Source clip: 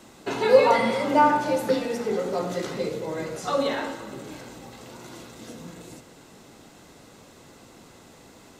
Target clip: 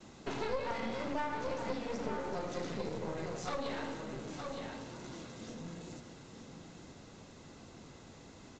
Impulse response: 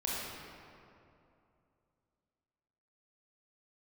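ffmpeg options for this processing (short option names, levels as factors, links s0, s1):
-af "bass=f=250:g=7,treble=f=4000:g=1,bandreject=f=60:t=h:w=6,bandreject=f=120:t=h:w=6,bandreject=f=180:t=h:w=6,bandreject=f=240:t=h:w=6,bandreject=f=300:t=h:w=6,aecho=1:1:915:0.299,acompressor=threshold=0.0501:ratio=4,aresample=16000,aeval=exprs='clip(val(0),-1,0.0126)':c=same,aresample=44100,agate=range=0.0224:threshold=0.00224:ratio=3:detection=peak,volume=0.501"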